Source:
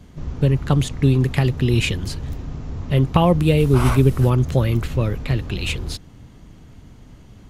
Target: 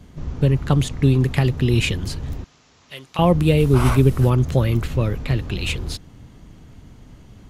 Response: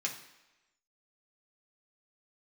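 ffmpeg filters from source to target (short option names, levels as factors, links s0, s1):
-filter_complex "[0:a]asettb=1/sr,asplit=3[s0][s1][s2];[s0]atrim=end=2.444[s3];[s1]atrim=start=2.44:end=3.19,asetpts=PTS-STARTPTS,afade=t=in:d=0.004:c=qsin,afade=t=out:st=0.746:d=0.004:c=qsin,bandpass=f=6100:t=q:w=0.58:csg=0[s4];[s2]atrim=start=3.186[s5];[s3][s4]acrossfade=d=0.004:c1=hsin:c2=qsin[s6];[s6][s5]acrossfade=d=0.004:c1=qsin:c2=hsin"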